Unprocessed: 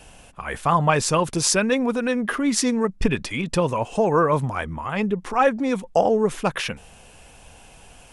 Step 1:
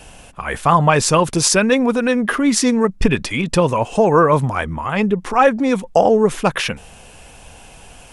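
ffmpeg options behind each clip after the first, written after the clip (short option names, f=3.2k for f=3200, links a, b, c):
-af "alimiter=level_in=7dB:limit=-1dB:release=50:level=0:latency=1,volume=-1dB"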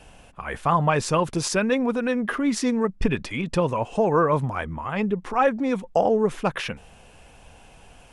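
-af "highshelf=f=4.8k:g=-8.5,volume=-7dB"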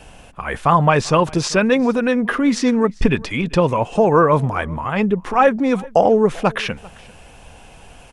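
-filter_complex "[0:a]acrossover=split=7000[a][b];[b]acompressor=threshold=-51dB:ratio=4:attack=1:release=60[c];[a][c]amix=inputs=2:normalize=0,aecho=1:1:393:0.0668,volume=6.5dB"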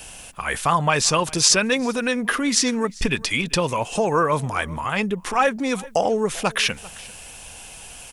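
-filter_complex "[0:a]asplit=2[a][b];[b]acompressor=threshold=-21dB:ratio=6,volume=0dB[c];[a][c]amix=inputs=2:normalize=0,crystalizer=i=7:c=0,volume=-10.5dB"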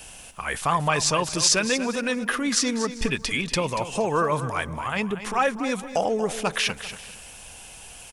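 -af "aecho=1:1:235|470|705:0.251|0.0628|0.0157,volume=-3.5dB"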